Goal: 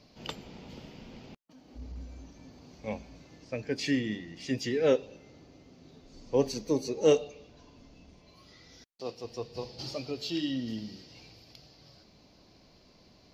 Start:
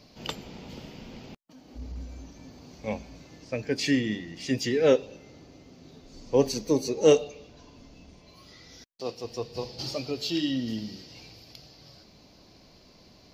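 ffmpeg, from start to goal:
ffmpeg -i in.wav -af "highshelf=frequency=8700:gain=-7,volume=-4dB" out.wav

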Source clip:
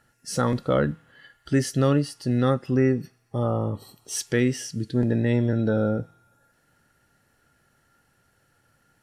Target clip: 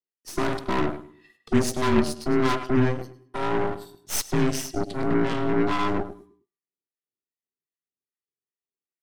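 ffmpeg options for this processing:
ffmpeg -i in.wav -filter_complex "[0:a]afftfilt=real='real(if(between(b,1,1008),(2*floor((b-1)/24)+1)*24-b,b),0)':imag='imag(if(between(b,1,1008),(2*floor((b-1)/24)+1)*24-b,b),0)*if(between(b,1,1008),-1,1)':win_size=2048:overlap=0.75,highpass=frequency=91:width=0.5412,highpass=frequency=91:width=1.3066,agate=range=-33dB:threshold=-55dB:ratio=16:detection=peak,acrossover=split=230|1600|3400[link_01][link_02][link_03][link_04];[link_02]adynamicsmooth=sensitivity=7.5:basefreq=650[link_05];[link_01][link_05][link_03][link_04]amix=inputs=4:normalize=0,asoftclip=type=tanh:threshold=-17dB,acrossover=split=700[link_06][link_07];[link_06]aeval=exprs='val(0)*(1-0.7/2+0.7/2*cos(2*PI*2.5*n/s))':channel_layout=same[link_08];[link_07]aeval=exprs='val(0)*(1-0.7/2-0.7/2*cos(2*PI*2.5*n/s))':channel_layout=same[link_09];[link_08][link_09]amix=inputs=2:normalize=0,asplit=2[link_10][link_11];[link_11]adelay=104,lowpass=frequency=4000:poles=1,volume=-10dB,asplit=2[link_12][link_13];[link_13]adelay=104,lowpass=frequency=4000:poles=1,volume=0.34,asplit=2[link_14][link_15];[link_15]adelay=104,lowpass=frequency=4000:poles=1,volume=0.34,asplit=2[link_16][link_17];[link_17]adelay=104,lowpass=frequency=4000:poles=1,volume=0.34[link_18];[link_10][link_12][link_14][link_16][link_18]amix=inputs=5:normalize=0,aeval=exprs='0.168*(cos(1*acos(clip(val(0)/0.168,-1,1)))-cos(1*PI/2))+0.0266*(cos(3*acos(clip(val(0)/0.168,-1,1)))-cos(3*PI/2))+0.0266*(cos(4*acos(clip(val(0)/0.168,-1,1)))-cos(4*PI/2))+0.0266*(cos(6*acos(clip(val(0)/0.168,-1,1)))-cos(6*PI/2))+0.0299*(cos(8*acos(clip(val(0)/0.168,-1,1)))-cos(8*PI/2))':channel_layout=same,volume=6dB" out.wav

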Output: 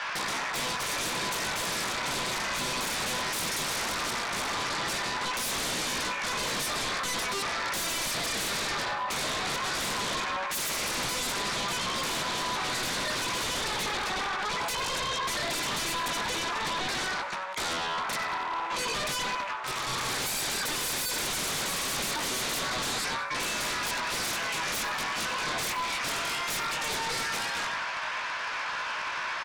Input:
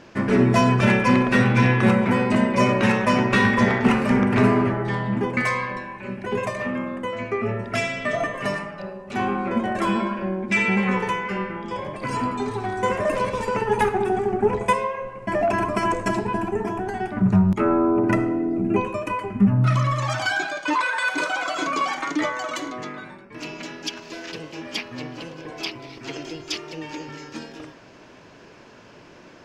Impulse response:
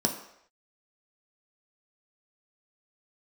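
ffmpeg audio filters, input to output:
-filter_complex "[0:a]flanger=delay=16:depth=7.9:speed=0.17,acrossover=split=2200|5100[link_01][link_02][link_03];[link_01]acompressor=threshold=-34dB:ratio=4[link_04];[link_02]acompressor=threshold=-49dB:ratio=4[link_05];[link_03]acompressor=threshold=-53dB:ratio=4[link_06];[link_04][link_05][link_06]amix=inputs=3:normalize=0,asplit=2[link_07][link_08];[link_08]alimiter=level_in=6.5dB:limit=-24dB:level=0:latency=1:release=392,volume=-6.5dB,volume=-3dB[link_09];[link_07][link_09]amix=inputs=2:normalize=0,volume=32.5dB,asoftclip=hard,volume=-32.5dB,highpass=frequency=960:width=0.5412,highpass=frequency=960:width=1.3066,adynamicsmooth=sensitivity=1:basefreq=4500,aeval=exprs='0.0376*sin(PI/2*7.08*val(0)/0.0376)':channel_layout=same,aecho=1:1:94|188|282|376:0.158|0.0697|0.0307|0.0135,asplit=2[link_10][link_11];[1:a]atrim=start_sample=2205,asetrate=27783,aresample=44100[link_12];[link_11][link_12]afir=irnorm=-1:irlink=0,volume=-29dB[link_13];[link_10][link_13]amix=inputs=2:normalize=0"

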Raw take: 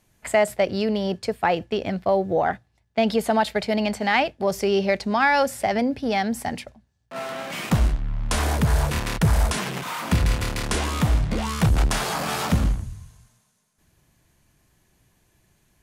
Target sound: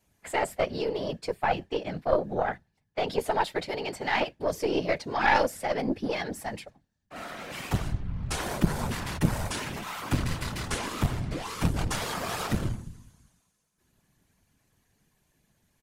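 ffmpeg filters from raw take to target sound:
ffmpeg -i in.wav -af "aecho=1:1:7:0.81,afftfilt=real='hypot(re,im)*cos(2*PI*random(0))':imag='hypot(re,im)*sin(2*PI*random(1))':win_size=512:overlap=0.75,aeval=exprs='0.473*(cos(1*acos(clip(val(0)/0.473,-1,1)))-cos(1*PI/2))+0.211*(cos(2*acos(clip(val(0)/0.473,-1,1)))-cos(2*PI/2))':channel_layout=same,volume=-2.5dB" out.wav

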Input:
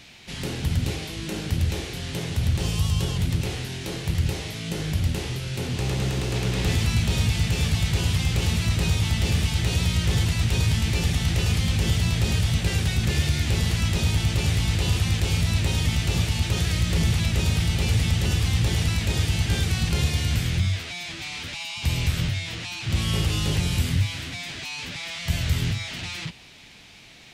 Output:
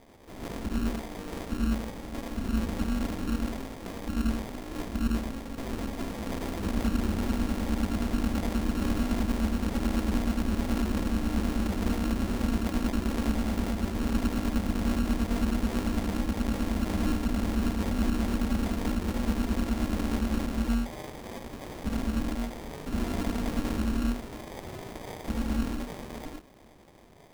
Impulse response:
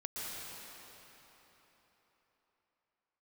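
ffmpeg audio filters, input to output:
-filter_complex "[1:a]atrim=start_sample=2205,afade=type=out:start_time=0.2:duration=0.01,atrim=end_sample=9261,asetrate=66150,aresample=44100[link_01];[0:a][link_01]afir=irnorm=-1:irlink=0,acrusher=samples=32:mix=1:aa=0.000001,aeval=exprs='val(0)*sin(2*PI*140*n/s)':channel_layout=same,volume=3dB"

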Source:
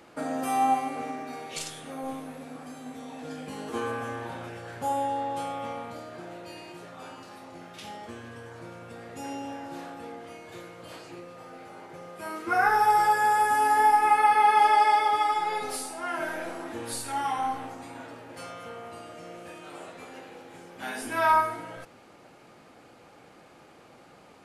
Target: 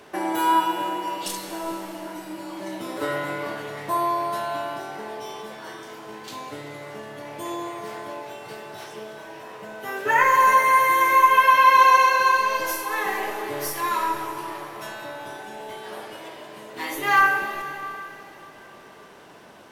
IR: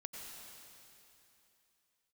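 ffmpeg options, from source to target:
-filter_complex "[0:a]asetrate=54684,aresample=44100,asplit=2[link_01][link_02];[link_02]equalizer=frequency=410:width_type=o:width=0.43:gain=4.5[link_03];[1:a]atrim=start_sample=2205,asetrate=39249,aresample=44100[link_04];[link_03][link_04]afir=irnorm=-1:irlink=0,volume=1.5dB[link_05];[link_01][link_05]amix=inputs=2:normalize=0"

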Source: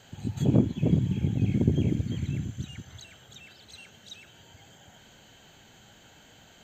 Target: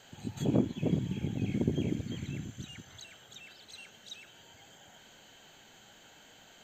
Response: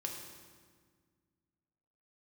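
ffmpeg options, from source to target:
-af "equalizer=frequency=74:width_type=o:width=2.7:gain=-10.5,volume=-1dB"

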